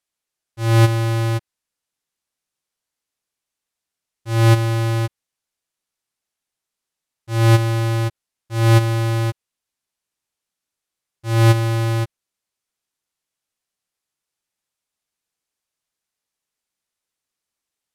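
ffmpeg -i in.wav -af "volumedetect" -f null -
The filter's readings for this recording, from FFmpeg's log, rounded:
mean_volume: -22.6 dB
max_volume: -8.0 dB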